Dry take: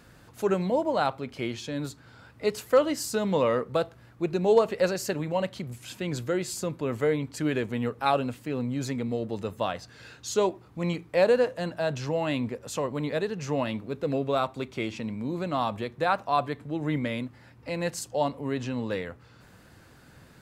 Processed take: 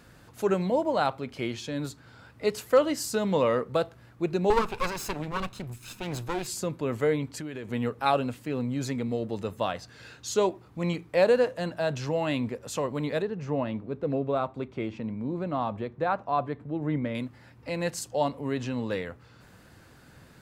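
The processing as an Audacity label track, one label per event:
4.500000	6.470000	comb filter that takes the minimum delay 0.77 ms
7.290000	7.710000	compression, threshold -33 dBFS
13.220000	17.150000	low-pass 1.1 kHz 6 dB/octave

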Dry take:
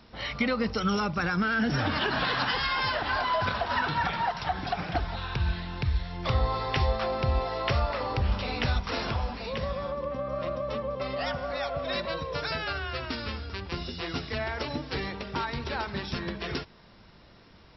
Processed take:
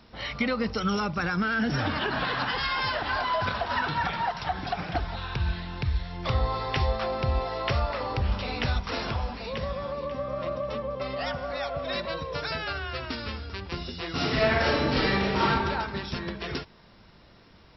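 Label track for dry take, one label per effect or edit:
1.920000	2.580000	low-pass 3.6 kHz 6 dB/octave
9.290000	10.180000	echo throw 540 ms, feedback 30%, level -11.5 dB
14.130000	15.470000	reverb throw, RT60 1.4 s, DRR -9 dB

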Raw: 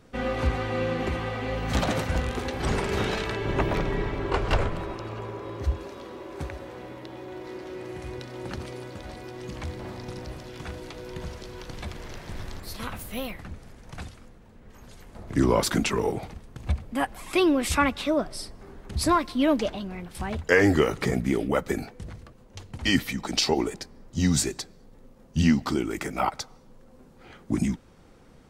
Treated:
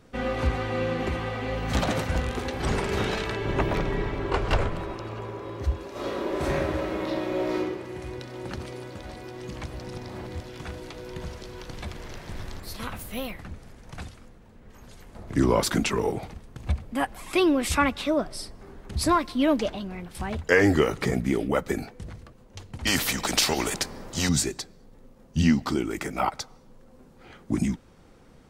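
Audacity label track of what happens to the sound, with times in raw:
5.910000	7.580000	reverb throw, RT60 1 s, DRR -11 dB
9.660000	10.400000	reverse
22.870000	24.290000	spectrum-flattening compressor 2:1

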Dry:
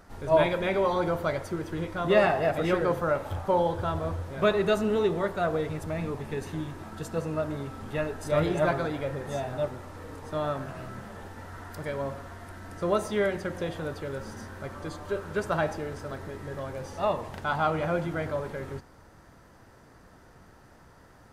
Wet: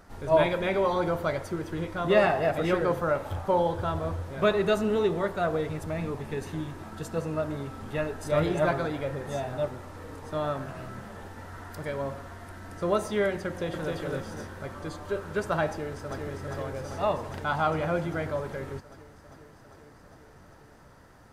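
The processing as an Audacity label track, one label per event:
13.470000	13.940000	echo throw 260 ms, feedback 45%, level -2 dB
15.700000	16.220000	echo throw 400 ms, feedback 80%, level -4 dB

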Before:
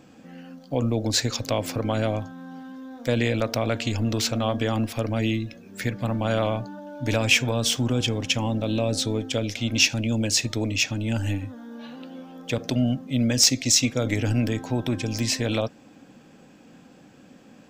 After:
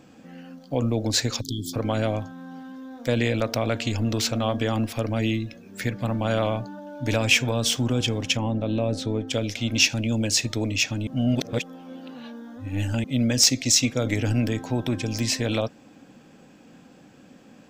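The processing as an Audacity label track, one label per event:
1.410000	1.730000	spectral selection erased 410–3100 Hz
8.370000	9.280000	peaking EQ 13 kHz -13 dB 2.6 oct
11.070000	13.040000	reverse

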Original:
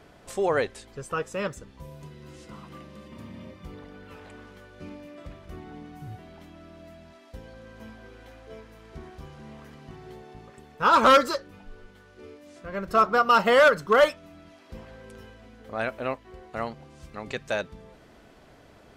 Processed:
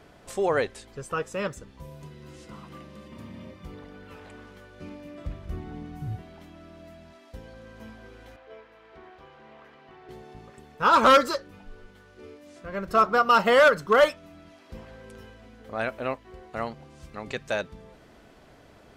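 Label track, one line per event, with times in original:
5.050000	6.220000	bass shelf 180 Hz +10.5 dB
8.360000	10.090000	three-band isolator lows -16 dB, under 370 Hz, highs -18 dB, over 3.8 kHz

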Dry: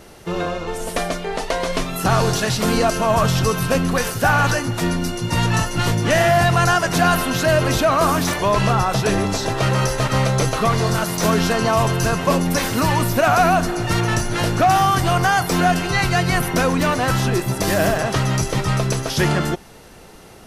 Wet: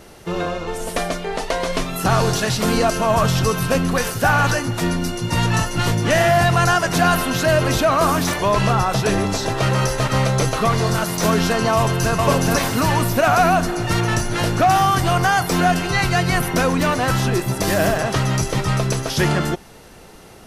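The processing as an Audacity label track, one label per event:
11.760000	12.160000	echo throw 420 ms, feedback 35%, level -2 dB

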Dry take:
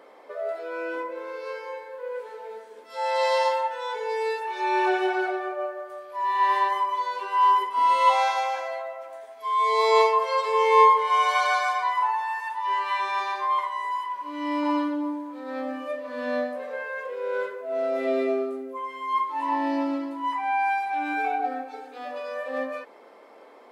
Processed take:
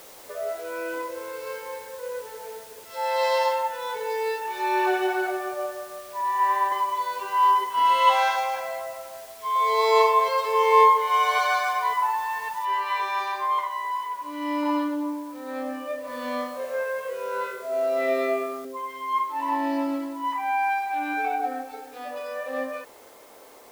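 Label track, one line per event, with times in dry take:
6.210000	6.720000	three-band isolator lows -16 dB, under 350 Hz, highs -13 dB, over 2.2 kHz
7.700000	8.360000	small resonant body resonances 1.7/2.9 kHz, height 16 dB, ringing for 25 ms
9.000000	9.730000	echo throw 550 ms, feedback 65%, level -2.5 dB
12.650000	12.650000	noise floor step -48 dB -55 dB
16.050000	18.650000	flutter echo walls apart 3.6 m, dies away in 0.47 s

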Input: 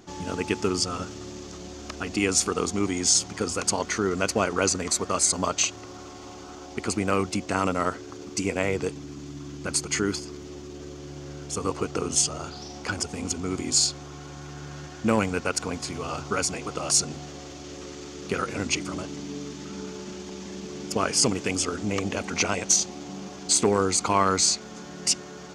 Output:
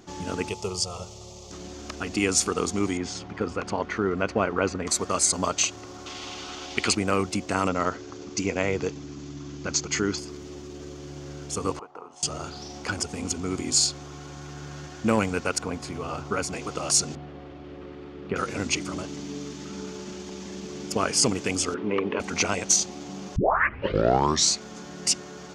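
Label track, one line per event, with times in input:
0.490000	1.510000	static phaser centre 670 Hz, stages 4
2.970000	4.870000	low-pass 2.4 kHz
6.060000	6.950000	peaking EQ 3.1 kHz +14.5 dB 1.9 oct
7.680000	10.180000	careless resampling rate divided by 3×, down none, up filtered
11.790000	12.230000	band-pass filter 890 Hz, Q 3.8
15.580000	16.530000	peaking EQ 6.8 kHz -7 dB 2.4 oct
17.150000	18.360000	distance through air 460 m
21.740000	22.200000	cabinet simulation 180–3000 Hz, peaks and dips at 410 Hz +9 dB, 720 Hz -8 dB, 1 kHz +8 dB
23.360000	23.360000	tape start 1.18 s

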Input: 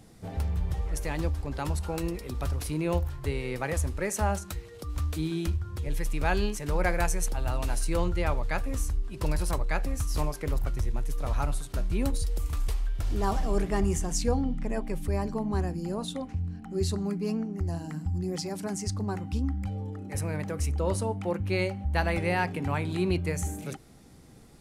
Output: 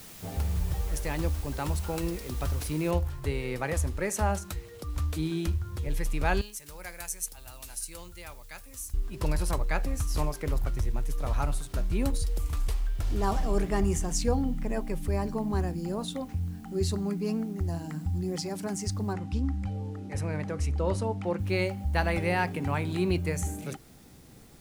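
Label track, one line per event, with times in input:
2.910000	2.910000	noise floor step -48 dB -62 dB
6.410000	8.940000	pre-emphasis filter coefficient 0.9
19.130000	21.390000	distance through air 56 m

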